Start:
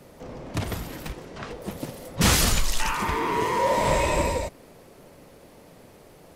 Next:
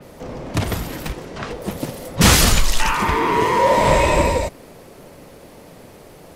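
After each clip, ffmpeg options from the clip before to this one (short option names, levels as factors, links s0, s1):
-af "adynamicequalizer=threshold=0.0141:dfrequency=4800:dqfactor=0.7:tfrequency=4800:tqfactor=0.7:attack=5:release=100:ratio=0.375:range=2:mode=cutabove:tftype=highshelf,volume=2.37"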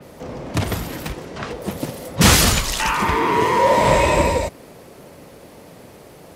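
-af "highpass=50"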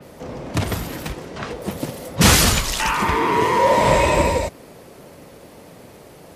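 -ar 32000 -c:a libmp3lame -b:a 80k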